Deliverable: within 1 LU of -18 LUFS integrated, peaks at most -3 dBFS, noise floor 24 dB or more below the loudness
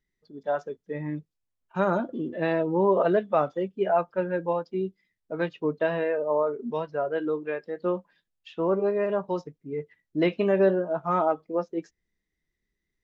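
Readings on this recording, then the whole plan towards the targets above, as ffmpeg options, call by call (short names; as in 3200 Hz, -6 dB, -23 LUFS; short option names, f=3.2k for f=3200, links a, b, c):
loudness -27.5 LUFS; peak -11.0 dBFS; loudness target -18.0 LUFS
-> -af "volume=9.5dB,alimiter=limit=-3dB:level=0:latency=1"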